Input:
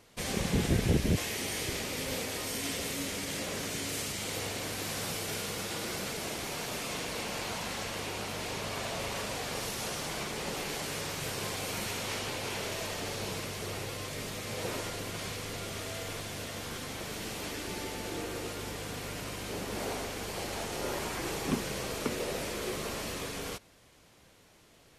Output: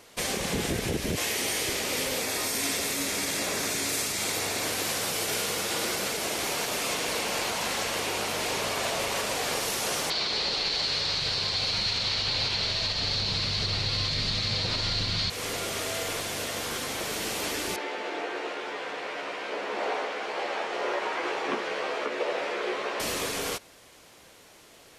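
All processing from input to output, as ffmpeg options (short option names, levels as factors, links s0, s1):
-filter_complex "[0:a]asettb=1/sr,asplit=3[s0][s1][s2];[s0]atrim=end=2.204[s3];[s1]atrim=start=2.2:end=4.66,asetpts=PTS-STARTPTS,afade=t=in:d=0.004:c=qsin,afade=t=out:st=2.456:d=0.004:c=qsin,equalizer=f=510:w=6.7:g=-5.5,bandreject=f=3000:w=9.8[s4];[s2]atrim=start=4.656[s5];[s3][s4]acrossfade=d=0.004:c1=hsin:c2=qsin[s6];[s6][s5]acrossfade=d=0.004:c1=qsin:c2=hsin,asettb=1/sr,asplit=3[s7][s8][s9];[s7]atrim=end=10.104[s10];[s8]atrim=start=10.1:end=15.3,asetpts=PTS-STARTPTS,afade=t=in:d=0.004:c=qsin,afade=t=out:st=5.196:d=0.004:c=qsin,lowpass=f=4300:t=q:w=7,asubboost=boost=11:cutoff=130[s11];[s9]atrim=start=15.296[s12];[s10][s11]acrossfade=d=0.004:c1=hsin:c2=qsin[s13];[s13][s12]acrossfade=d=0.004:c1=qsin:c2=hsin,asettb=1/sr,asplit=3[s14][s15][s16];[s14]atrim=end=17.764[s17];[s15]atrim=start=17.76:end=23,asetpts=PTS-STARTPTS,afade=t=in:d=0.004:c=qsin,afade=t=out:st=5.236:d=0.004:c=qsin,highpass=430,lowpass=2500,asplit=2[s18][s19];[s19]adelay=14,volume=0.596[s20];[s18][s20]amix=inputs=2:normalize=0,atrim=end_sample=231084[s21];[s16]atrim=start=22.996[s22];[s17][s21]acrossfade=d=0.004:c1=hsin:c2=qsin[s23];[s23][s22]acrossfade=d=0.004:c1=qsin:c2=hsin,bass=f=250:g=-9,treble=f=4000:g=1,alimiter=level_in=1.33:limit=0.0631:level=0:latency=1:release=151,volume=0.75,volume=2.51"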